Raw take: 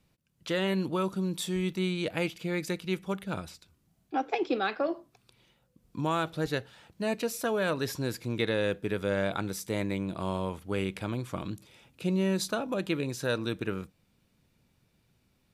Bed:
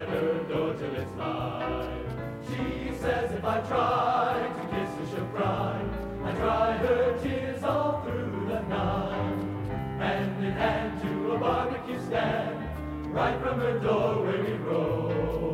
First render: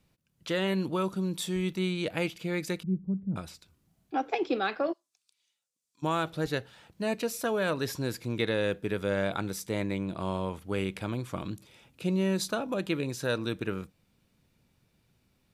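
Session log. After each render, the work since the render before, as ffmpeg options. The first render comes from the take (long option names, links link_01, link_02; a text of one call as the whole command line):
ffmpeg -i in.wav -filter_complex "[0:a]asettb=1/sr,asplit=3[link_01][link_02][link_03];[link_01]atrim=end=2.834[link_04];[link_02]atrim=start=2.83:end=3.36,asetpts=PTS-STARTPTS,afade=type=in:duration=0.004:curve=qsin,afade=type=out:start_time=0.526:duration=0.004:curve=qsin,lowpass=frequency=200:width_type=q:width=1.8[link_05];[link_03]atrim=start=3.356[link_06];[link_04][link_05]acrossfade=duration=0.004:curve1=hsin:curve2=qsin[link_07];[link_07][link_06]acrossfade=duration=0.004:curve1=qsin:curve2=hsin,asplit=3[link_08][link_09][link_10];[link_08]afade=type=out:start_time=4.92:duration=0.02[link_11];[link_09]bandpass=frequency=7100:width_type=q:width=1.6,afade=type=in:start_time=4.92:duration=0.02,afade=type=out:start_time=6.02:duration=0.02[link_12];[link_10]afade=type=in:start_time=6.02:duration=0.02[link_13];[link_11][link_12][link_13]amix=inputs=3:normalize=0,asettb=1/sr,asplit=3[link_14][link_15][link_16];[link_14]atrim=end=9.624[link_17];[link_15]atrim=start=9.62:end=10.56,asetpts=PTS-STARTPTS,afade=type=in:duration=0.004:curve=qsin,afade=type=out:start_time=0.936:duration=0.004:curve=qsin,highshelf=frequency=9200:gain=-6[link_18];[link_16]atrim=start=10.556[link_19];[link_17][link_18]acrossfade=duration=0.004:curve1=hsin:curve2=qsin[link_20];[link_20][link_19]acrossfade=duration=0.004:curve1=qsin:curve2=hsin" out.wav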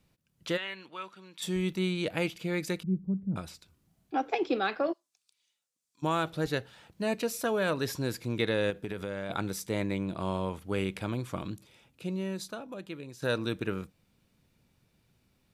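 ffmpeg -i in.wav -filter_complex "[0:a]asplit=3[link_01][link_02][link_03];[link_01]afade=type=out:start_time=0.56:duration=0.02[link_04];[link_02]bandpass=frequency=2200:width_type=q:width=1.4,afade=type=in:start_time=0.56:duration=0.02,afade=type=out:start_time=1.41:duration=0.02[link_05];[link_03]afade=type=in:start_time=1.41:duration=0.02[link_06];[link_04][link_05][link_06]amix=inputs=3:normalize=0,asettb=1/sr,asplit=3[link_07][link_08][link_09];[link_07]atrim=end=8.704[link_10];[link_08]atrim=start=8.7:end=9.3,asetpts=PTS-STARTPTS,afade=type=in:duration=0.004:curve=qsin,afade=type=out:start_time=0.596:duration=0.004:curve=qsin,acompressor=threshold=-31dB:ratio=6:attack=3.2:release=140:knee=1:detection=peak[link_11];[link_09]atrim=start=9.296[link_12];[link_10][link_11]acrossfade=duration=0.004:curve1=hsin:curve2=qsin[link_13];[link_13][link_12]acrossfade=duration=0.004:curve1=qsin:curve2=hsin,asplit=2[link_14][link_15];[link_14]atrim=end=13.22,asetpts=PTS-STARTPTS,afade=type=out:start_time=11.31:duration=1.91:curve=qua:silence=0.266073[link_16];[link_15]atrim=start=13.22,asetpts=PTS-STARTPTS,afade=type=in:duration=0.004:curve=hsin:silence=0.266073[link_17];[link_16][link_17]concat=n=2:v=0:a=1" out.wav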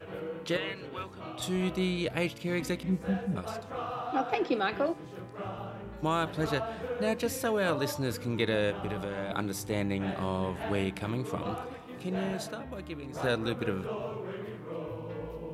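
ffmpeg -i in.wav -i bed.wav -filter_complex "[1:a]volume=-11dB[link_01];[0:a][link_01]amix=inputs=2:normalize=0" out.wav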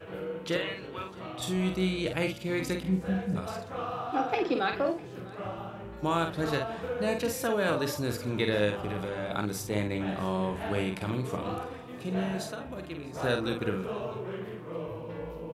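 ffmpeg -i in.wav -filter_complex "[0:a]asplit=2[link_01][link_02];[link_02]adelay=48,volume=-6dB[link_03];[link_01][link_03]amix=inputs=2:normalize=0,aecho=1:1:650:0.0794" out.wav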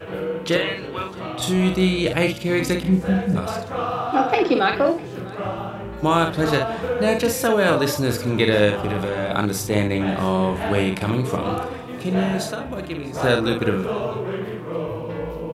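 ffmpeg -i in.wav -af "volume=10dB" out.wav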